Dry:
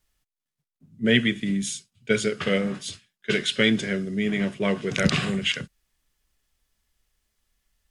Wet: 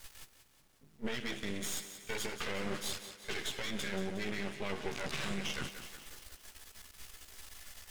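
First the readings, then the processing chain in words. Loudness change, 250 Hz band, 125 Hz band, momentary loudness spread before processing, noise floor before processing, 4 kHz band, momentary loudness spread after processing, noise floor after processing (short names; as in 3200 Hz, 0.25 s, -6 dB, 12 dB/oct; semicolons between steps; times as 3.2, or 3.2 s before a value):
-14.5 dB, -17.5 dB, -16.5 dB, 11 LU, under -85 dBFS, -12.5 dB, 15 LU, -65 dBFS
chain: low shelf 340 Hz -10 dB; reverse; upward compressor, threshold -24 dBFS; reverse; chorus voices 4, 0.63 Hz, delay 14 ms, depth 1.6 ms; compressor, threshold -26 dBFS, peak gain reduction 7.5 dB; added noise pink -70 dBFS; limiter -25 dBFS, peak gain reduction 11.5 dB; half-wave rectifier; on a send: thinning echo 0.181 s, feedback 55%, high-pass 160 Hz, level -10.5 dB; on the sum: gain +1 dB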